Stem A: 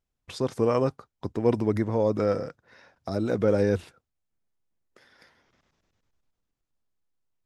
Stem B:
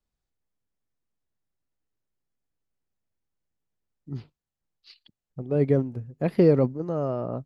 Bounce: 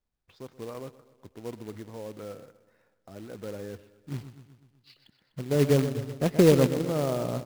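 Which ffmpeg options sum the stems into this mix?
ffmpeg -i stem1.wav -i stem2.wav -filter_complex "[0:a]lowpass=3500,volume=-16dB,asplit=2[link_01][link_02];[link_02]volume=-18dB[link_03];[1:a]aemphasis=mode=reproduction:type=50fm,volume=-1dB,asplit=2[link_04][link_05];[link_05]volume=-11dB[link_06];[link_03][link_06]amix=inputs=2:normalize=0,aecho=0:1:125|250|375|500|625|750|875|1000|1125:1|0.57|0.325|0.185|0.106|0.0602|0.0343|0.0195|0.0111[link_07];[link_01][link_04][link_07]amix=inputs=3:normalize=0,acrusher=bits=3:mode=log:mix=0:aa=0.000001" out.wav

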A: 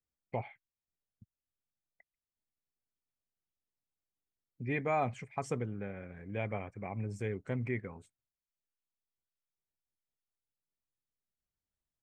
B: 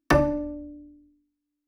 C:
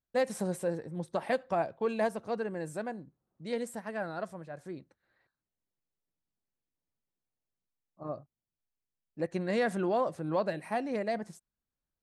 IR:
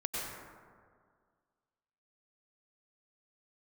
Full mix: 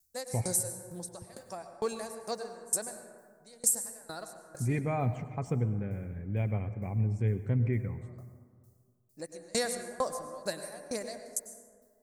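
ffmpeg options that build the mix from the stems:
-filter_complex "[0:a]lowshelf=frequency=320:gain=9.5,volume=-6dB,asplit=2[link_01][link_02];[link_02]volume=-14dB[link_03];[2:a]highpass=frequency=470:poles=1,aexciter=amount=9.2:drive=7.8:freq=4600,aeval=exprs='val(0)*pow(10,-32*if(lt(mod(2.2*n/s,1),2*abs(2.2)/1000),1-mod(2.2*n/s,1)/(2*abs(2.2)/1000),(mod(2.2*n/s,1)-2*abs(2.2)/1000)/(1-2*abs(2.2)/1000))/20)':channel_layout=same,volume=0.5dB,asplit=2[link_04][link_05];[link_05]volume=-8dB[link_06];[3:a]atrim=start_sample=2205[link_07];[link_03][link_06]amix=inputs=2:normalize=0[link_08];[link_08][link_07]afir=irnorm=-1:irlink=0[link_09];[link_01][link_04][link_09]amix=inputs=3:normalize=0,lowshelf=frequency=160:gain=9.5"

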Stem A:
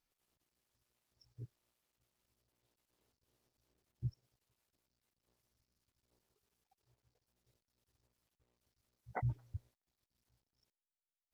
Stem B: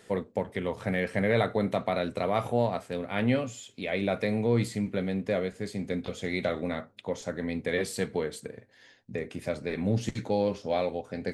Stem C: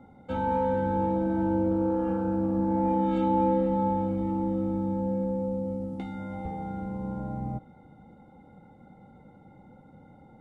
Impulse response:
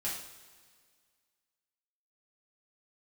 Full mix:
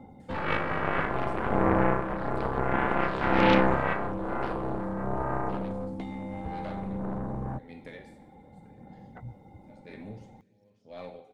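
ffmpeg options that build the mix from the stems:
-filter_complex "[0:a]volume=-9dB[link_01];[1:a]aeval=exprs='val(0)*pow(10,-37*(0.5-0.5*cos(2*PI*0.92*n/s))/20)':channel_layout=same,adelay=200,volume=-16dB,asplit=2[link_02][link_03];[link_03]volume=-5dB[link_04];[2:a]bandreject=frequency=1400:width=8.1,volume=-1dB[link_05];[3:a]atrim=start_sample=2205[link_06];[link_04][link_06]afir=irnorm=-1:irlink=0[link_07];[link_01][link_02][link_05][link_07]amix=inputs=4:normalize=0,aphaser=in_gain=1:out_gain=1:delay=3.5:decay=0.28:speed=0.56:type=sinusoidal,aeval=exprs='0.251*(cos(1*acos(clip(val(0)/0.251,-1,1)))-cos(1*PI/2))+0.0282*(cos(5*acos(clip(val(0)/0.251,-1,1)))-cos(5*PI/2))+0.1*(cos(7*acos(clip(val(0)/0.251,-1,1)))-cos(7*PI/2))+0.0251*(cos(8*acos(clip(val(0)/0.251,-1,1)))-cos(8*PI/2))':channel_layout=same"

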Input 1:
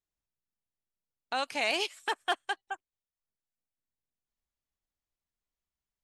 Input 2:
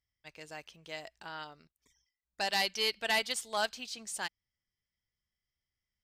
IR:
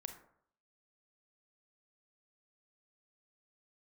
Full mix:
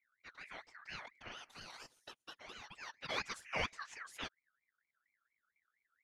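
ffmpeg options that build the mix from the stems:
-filter_complex "[0:a]acompressor=threshold=-30dB:ratio=3,volume=-10dB,asplit=2[link_01][link_02];[1:a]aemphasis=mode=reproduction:type=riaa,volume=3dB[link_03];[link_02]apad=whole_len=266210[link_04];[link_03][link_04]sidechaincompress=threshold=-58dB:ratio=20:attack=36:release=490[link_05];[link_01][link_05]amix=inputs=2:normalize=0,afftfilt=real='hypot(re,im)*cos(2*PI*random(0))':imag='hypot(re,im)*sin(2*PI*random(1))':win_size=512:overlap=0.75,aeval=exprs='val(0)*sin(2*PI*1800*n/s+1800*0.25/4.3*sin(2*PI*4.3*n/s))':channel_layout=same"

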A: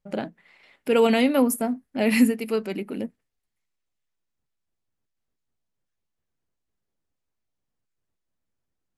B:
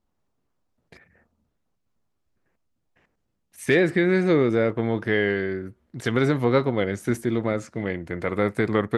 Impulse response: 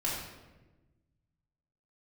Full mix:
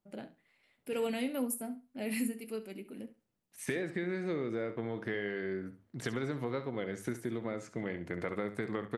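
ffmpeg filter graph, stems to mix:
-filter_complex "[0:a]equalizer=frequency=970:width=1.1:gain=-4.5,aexciter=amount=2.1:drive=6.6:freq=8200,flanger=delay=8:depth=4.7:regen=-69:speed=0.34:shape=triangular,volume=-10dB,asplit=2[link_01][link_02];[link_02]volume=-15dB[link_03];[1:a]highpass=100,acompressor=threshold=-27dB:ratio=6,volume=-5.5dB,asplit=2[link_04][link_05];[link_05]volume=-12dB[link_06];[link_03][link_06]amix=inputs=2:normalize=0,aecho=0:1:68|136|204:1|0.19|0.0361[link_07];[link_01][link_04][link_07]amix=inputs=3:normalize=0,bandreject=frequency=50:width_type=h:width=6,bandreject=frequency=100:width_type=h:width=6"

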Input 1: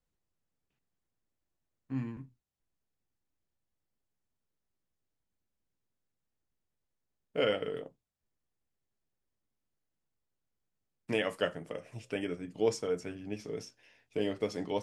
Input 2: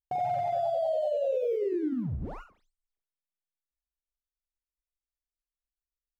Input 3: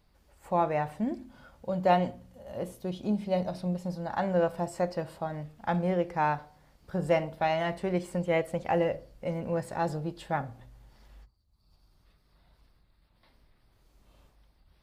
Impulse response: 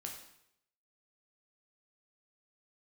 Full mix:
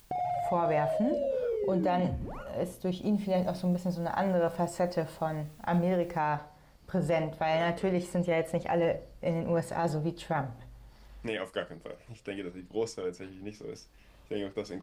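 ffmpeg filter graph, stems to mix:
-filter_complex "[0:a]adelay=150,volume=-2.5dB[link_01];[1:a]acompressor=mode=upward:threshold=-31dB:ratio=2.5,volume=-2.5dB[link_02];[2:a]volume=2.5dB,asplit=2[link_03][link_04];[link_04]apad=whole_len=660527[link_05];[link_01][link_05]sidechaincompress=threshold=-34dB:ratio=8:attack=16:release=409[link_06];[link_06][link_02][link_03]amix=inputs=3:normalize=0,alimiter=limit=-20dB:level=0:latency=1:release=16"

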